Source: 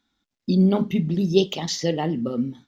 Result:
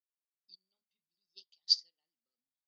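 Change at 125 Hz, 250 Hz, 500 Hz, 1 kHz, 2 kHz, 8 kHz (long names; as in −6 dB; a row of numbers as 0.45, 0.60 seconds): below −40 dB, below −40 dB, below −40 dB, below −40 dB, below −35 dB, can't be measured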